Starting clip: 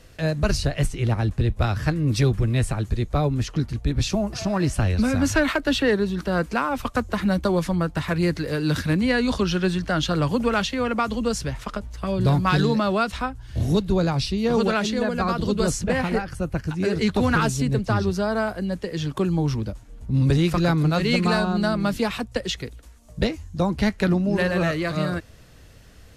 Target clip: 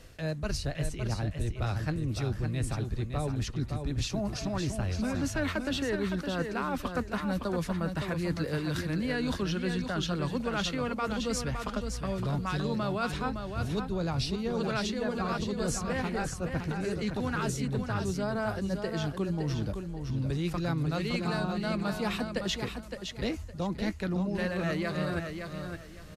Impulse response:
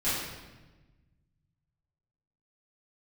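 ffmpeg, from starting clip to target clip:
-af "areverse,acompressor=threshold=-27dB:ratio=6,areverse,aecho=1:1:563|1126|1689:0.473|0.118|0.0296,volume=-2dB"

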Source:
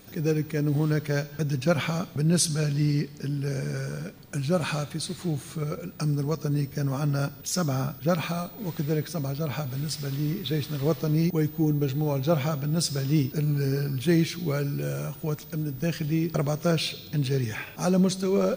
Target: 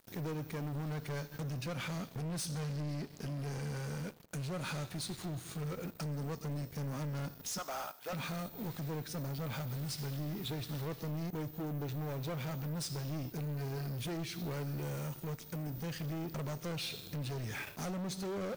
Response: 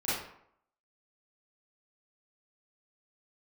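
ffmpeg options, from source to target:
-filter_complex "[0:a]asettb=1/sr,asplit=3[a][b][c];[a]atrim=end=7.584[d];[b]atrim=start=7.58:end=8.13,asetpts=PTS-STARTPTS,afade=t=in:d=0.004:c=qsin,afade=t=out:st=0.546:d=0.004:c=qsin,highpass=f=790:t=q:w=1.7[e];[c]atrim=start=8.126[f];[d][e]acrossfade=d=0.004:c1=hsin:c2=qsin[g];[g][f]acrossfade=d=0.004:c1=qsin:c2=hsin,aeval=exprs='sgn(val(0))*max(abs(val(0))-0.00501,0)':c=same,acompressor=threshold=-32dB:ratio=3,asoftclip=type=hard:threshold=-36.5dB,asplit=2[h][i];[1:a]atrim=start_sample=2205[j];[i][j]afir=irnorm=-1:irlink=0,volume=-29.5dB[k];[h][k]amix=inputs=2:normalize=0"

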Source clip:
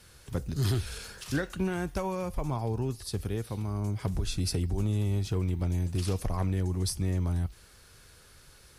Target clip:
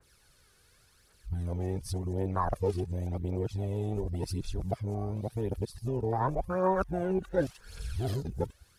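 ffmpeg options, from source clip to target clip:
-filter_complex "[0:a]areverse,afwtdn=0.0224,acrossover=split=450[a][b];[a]acompressor=threshold=-39dB:ratio=6[c];[b]aphaser=in_gain=1:out_gain=1:delay=2.8:decay=0.55:speed=0.9:type=triangular[d];[c][d]amix=inputs=2:normalize=0,adynamicequalizer=threshold=0.00141:dfrequency=2400:dqfactor=0.7:tfrequency=2400:tqfactor=0.7:attack=5:release=100:ratio=0.375:range=3.5:mode=cutabove:tftype=highshelf,volume=7dB"

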